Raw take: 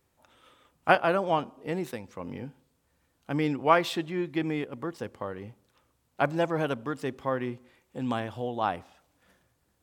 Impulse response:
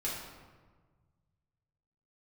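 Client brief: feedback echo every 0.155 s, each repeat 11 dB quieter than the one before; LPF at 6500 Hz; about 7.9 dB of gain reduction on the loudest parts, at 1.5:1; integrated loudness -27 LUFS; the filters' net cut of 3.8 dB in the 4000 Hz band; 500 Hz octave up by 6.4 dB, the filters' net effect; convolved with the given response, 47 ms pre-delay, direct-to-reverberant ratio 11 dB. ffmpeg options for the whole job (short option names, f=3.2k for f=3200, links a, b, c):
-filter_complex "[0:a]lowpass=6.5k,equalizer=f=500:t=o:g=8,equalizer=f=4k:t=o:g=-5,acompressor=threshold=-34dB:ratio=1.5,aecho=1:1:155|310|465:0.282|0.0789|0.0221,asplit=2[a][b];[1:a]atrim=start_sample=2205,adelay=47[c];[b][c]afir=irnorm=-1:irlink=0,volume=-15dB[d];[a][d]amix=inputs=2:normalize=0,volume=4dB"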